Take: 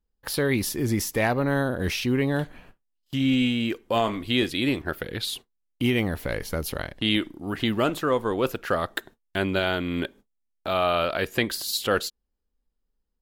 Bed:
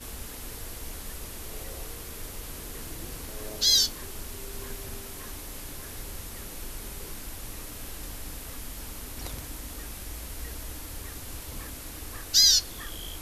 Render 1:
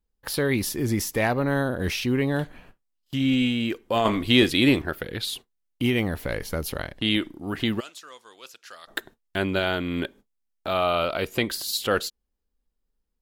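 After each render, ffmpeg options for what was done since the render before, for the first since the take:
-filter_complex "[0:a]asettb=1/sr,asplit=3[s0][s1][s2];[s0]atrim=end=4.054[s3];[s1]atrim=start=4.05:end=4.86,asetpts=PTS-STARTPTS,afade=t=in:d=0.004:c=qsin,afade=t=out:st=0.806:d=0.004:c=qsin,acontrast=46[s4];[s2]atrim=start=4.856[s5];[s3][s4]acrossfade=d=0.004:c1=hsin:c2=qsin[s6];[s6][s5]acrossfade=d=0.004:c1=qsin:c2=hsin,asplit=3[s7][s8][s9];[s7]afade=t=out:st=7.79:d=0.02[s10];[s8]bandpass=f=5900:t=q:w=1.6,afade=t=in:st=7.79:d=0.02,afade=t=out:st=8.87:d=0.02[s11];[s9]afade=t=in:st=8.87:d=0.02[s12];[s10][s11][s12]amix=inputs=3:normalize=0,asettb=1/sr,asplit=3[s13][s14][s15];[s13]atrim=end=10.814[s16];[s14]atrim=start=10.81:end=11.48,asetpts=PTS-STARTPTS,afade=t=in:d=0.004:c=qsin,afade=t=out:st=0.666:d=0.004:c=qsin,bandreject=f=1700:w=6.1[s17];[s15]atrim=start=11.476[s18];[s16][s17]acrossfade=d=0.004:c1=hsin:c2=qsin[s19];[s19][s18]acrossfade=d=0.004:c1=qsin:c2=hsin"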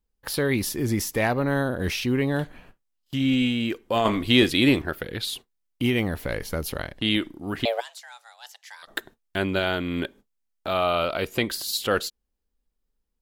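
-filter_complex "[0:a]asettb=1/sr,asplit=3[s0][s1][s2];[s0]atrim=end=7.654[s3];[s1]atrim=start=7.65:end=8.83,asetpts=PTS-STARTPTS,afade=t=in:d=0.004:c=qsin,afade=t=out:st=1.176:d=0.004:c=qsin,afreqshift=350[s4];[s2]atrim=start=8.826[s5];[s3][s4]acrossfade=d=0.004:c1=hsin:c2=qsin[s6];[s6][s5]acrossfade=d=0.004:c1=qsin:c2=hsin"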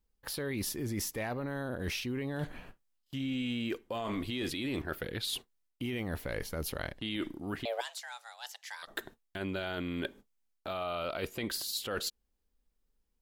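-af "alimiter=limit=0.141:level=0:latency=1:release=14,areverse,acompressor=threshold=0.0224:ratio=6,areverse"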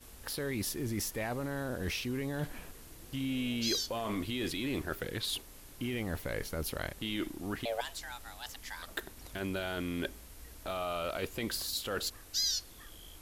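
-filter_complex "[1:a]volume=0.224[s0];[0:a][s0]amix=inputs=2:normalize=0"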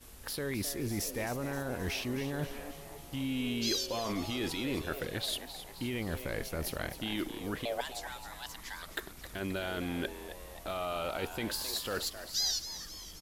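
-filter_complex "[0:a]asplit=7[s0][s1][s2][s3][s4][s5][s6];[s1]adelay=264,afreqshift=140,volume=0.266[s7];[s2]adelay=528,afreqshift=280,volume=0.143[s8];[s3]adelay=792,afreqshift=420,volume=0.0776[s9];[s4]adelay=1056,afreqshift=560,volume=0.0417[s10];[s5]adelay=1320,afreqshift=700,volume=0.0226[s11];[s6]adelay=1584,afreqshift=840,volume=0.0122[s12];[s0][s7][s8][s9][s10][s11][s12]amix=inputs=7:normalize=0"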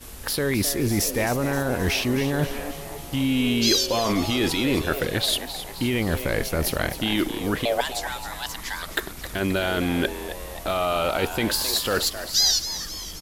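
-af "volume=3.98"

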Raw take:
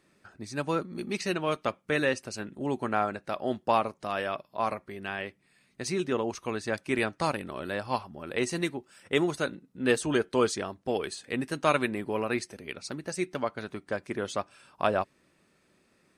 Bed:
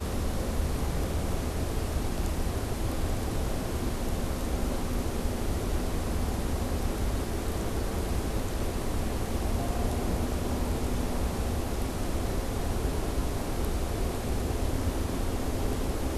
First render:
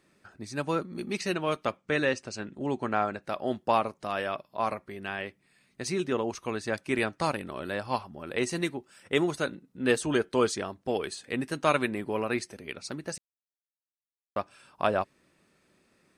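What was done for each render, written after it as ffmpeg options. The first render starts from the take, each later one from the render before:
-filter_complex "[0:a]asettb=1/sr,asplit=3[s0][s1][s2];[s0]atrim=end=1.774[s3];[s1]atrim=start=1.77:end=3.22,asetpts=PTS-STARTPTS,afade=t=in:d=0.004:c=qsin,afade=t=out:st=1.446:d=0.004:c=qsin,lowpass=f=8000:w=0.5412,lowpass=f=8000:w=1.3066[s4];[s2]atrim=start=3.216[s5];[s3][s4]acrossfade=d=0.004:c1=hsin:c2=qsin[s6];[s6][s5]acrossfade=d=0.004:c1=qsin:c2=hsin,asplit=3[s7][s8][s9];[s7]atrim=end=13.18,asetpts=PTS-STARTPTS,afade=t=out:st=13.176:d=0.004:c=hsin[s10];[s8]atrim=start=13.18:end=14.36,asetpts=PTS-STARTPTS,volume=0[s11];[s9]atrim=start=14.36,asetpts=PTS-STARTPTS,afade=t=in:d=0.004:c=hsin[s12];[s10][s11][s12]concat=n=3:v=0:a=1"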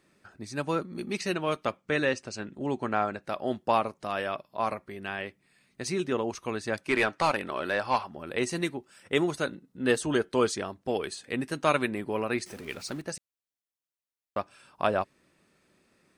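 -filter_complex "[0:a]asettb=1/sr,asplit=3[s0][s1][s2];[s0]atrim=end=6.884[s3];[s1]atrim=start=6.88:end=8.17,asetpts=PTS-STARTPTS,afade=t=in:d=0.004:c=qsin,afade=t=out:st=1.286:d=0.004:c=qsin,asplit=2[s4][s5];[s5]highpass=f=720:p=1,volume=5.01,asoftclip=type=tanh:threshold=0.224[s6];[s4][s6]amix=inputs=2:normalize=0,lowpass=f=3300:p=1,volume=0.501[s7];[s2]atrim=start=8.166[s8];[s3][s7]acrossfade=d=0.004:c1=hsin:c2=qsin[s9];[s9][s8]acrossfade=d=0.004:c1=qsin:c2=hsin,asettb=1/sr,asplit=3[s10][s11][s12];[s10]atrim=end=9.454[s13];[s11]atrim=start=9.45:end=10.29,asetpts=PTS-STARTPTS,afade=t=in:d=0.004:c=qsin,afade=t=out:st=0.836:d=0.004:c=qsin,bandreject=f=2400:w=12[s14];[s12]atrim=start=10.286[s15];[s13][s14]acrossfade=d=0.004:c1=hsin:c2=qsin[s16];[s16][s15]acrossfade=d=0.004:c1=qsin:c2=hsin,asettb=1/sr,asplit=3[s17][s18][s19];[s17]atrim=end=12.464[s20];[s18]atrim=start=12.46:end=13.02,asetpts=PTS-STARTPTS,afade=t=in:d=0.004:c=qsin,afade=t=out:st=0.556:d=0.004:c=qsin,aeval=exprs='val(0)+0.5*0.00596*sgn(val(0))':c=same[s21];[s19]atrim=start=13.016[s22];[s20][s21]acrossfade=d=0.004:c1=hsin:c2=qsin[s23];[s23][s22]acrossfade=d=0.004:c1=qsin:c2=hsin"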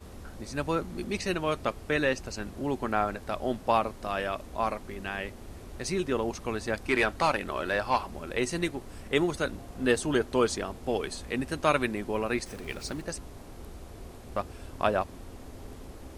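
-filter_complex "[1:a]volume=0.188[s0];[0:a][s0]amix=inputs=2:normalize=0"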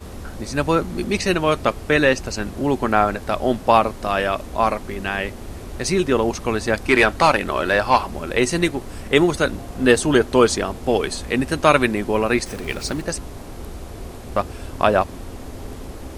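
-af "volume=3.35,alimiter=limit=0.891:level=0:latency=1"

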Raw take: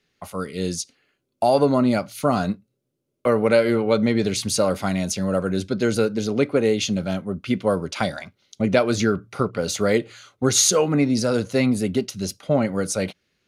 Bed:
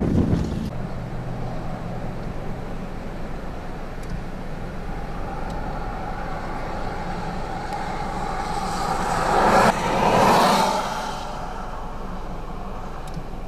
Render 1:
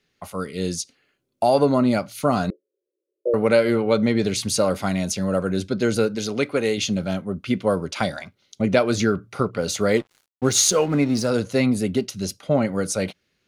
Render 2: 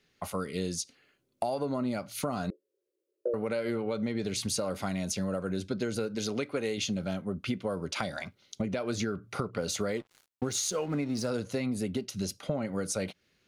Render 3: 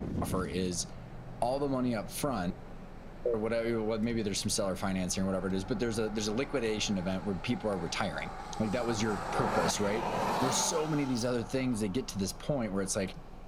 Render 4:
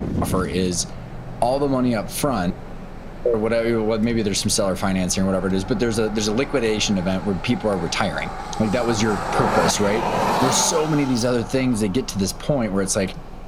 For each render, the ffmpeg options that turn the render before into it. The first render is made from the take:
-filter_complex "[0:a]asettb=1/sr,asplit=3[s0][s1][s2];[s0]atrim=end=2.504[s3];[s1]atrim=start=2.5:end=3.34,asetpts=PTS-STARTPTS,afade=t=in:d=0.004:c=qsin,afade=t=out:st=0.836:d=0.004:c=qsin,asuperpass=centerf=440:order=8:qfactor=1.9[s4];[s2]atrim=start=3.336[s5];[s3][s4]acrossfade=d=0.004:c1=hsin:c2=qsin[s6];[s6][s5]acrossfade=d=0.004:c1=qsin:c2=hsin,asettb=1/sr,asplit=3[s7][s8][s9];[s7]atrim=end=6.154[s10];[s8]atrim=start=6.15:end=6.78,asetpts=PTS-STARTPTS,afade=t=in:d=0.004:c=qsin,afade=t=out:st=0.626:d=0.004:c=qsin,tiltshelf=f=970:g=-4.5[s11];[s9]atrim=start=6.776[s12];[s10][s11]acrossfade=d=0.004:c1=hsin:c2=qsin[s13];[s13][s12]acrossfade=d=0.004:c1=qsin:c2=hsin,asettb=1/sr,asplit=3[s14][s15][s16];[s14]atrim=end=9.964[s17];[s15]atrim=start=9.96:end=11.3,asetpts=PTS-STARTPTS,afade=t=in:d=0.004:c=qsin,afade=t=out:st=1.336:d=0.004:c=qsin,aeval=exprs='sgn(val(0))*max(abs(val(0))-0.0112,0)':c=same[s18];[s16]atrim=start=11.296[s19];[s17][s18]acrossfade=d=0.004:c1=hsin:c2=qsin[s20];[s20][s19]acrossfade=d=0.004:c1=qsin:c2=hsin"
-af "alimiter=limit=0.282:level=0:latency=1:release=194,acompressor=threshold=0.0316:ratio=4"
-filter_complex "[1:a]volume=0.168[s0];[0:a][s0]amix=inputs=2:normalize=0"
-af "volume=3.76"

